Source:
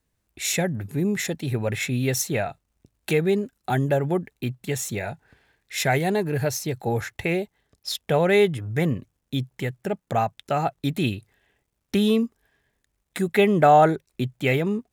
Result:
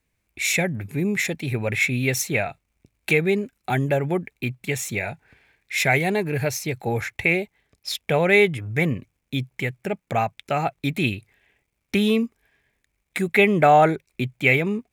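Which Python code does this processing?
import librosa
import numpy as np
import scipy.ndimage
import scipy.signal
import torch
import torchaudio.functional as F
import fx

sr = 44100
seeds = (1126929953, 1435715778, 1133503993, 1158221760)

y = fx.peak_eq(x, sr, hz=2300.0, db=12.0, octaves=0.38)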